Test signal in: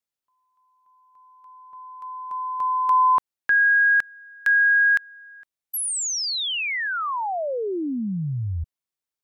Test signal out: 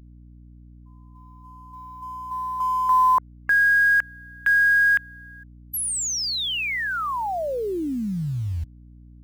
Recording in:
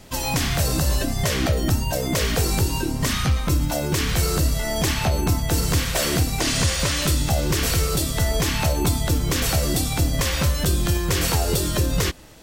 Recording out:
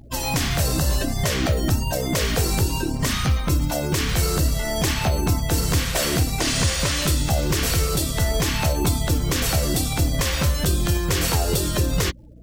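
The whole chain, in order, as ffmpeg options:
-af "afftfilt=real='re*gte(hypot(re,im),0.0126)':imag='im*gte(hypot(re,im),0.0126)':win_size=1024:overlap=0.75,acrusher=bits=7:mode=log:mix=0:aa=0.000001,aeval=exprs='val(0)+0.00562*(sin(2*PI*60*n/s)+sin(2*PI*2*60*n/s)/2+sin(2*PI*3*60*n/s)/3+sin(2*PI*4*60*n/s)/4+sin(2*PI*5*60*n/s)/5)':c=same"

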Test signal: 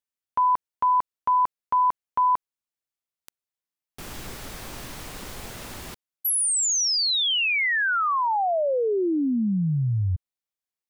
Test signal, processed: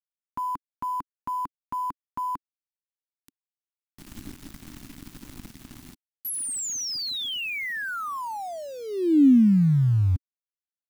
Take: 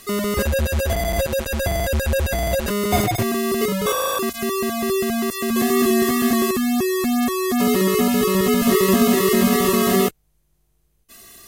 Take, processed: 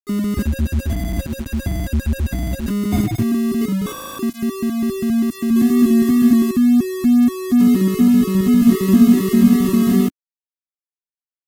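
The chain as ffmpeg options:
-af "aeval=exprs='val(0)*gte(abs(val(0)),0.0237)':c=same,lowshelf=f=370:t=q:w=3:g=9.5,volume=0.422"

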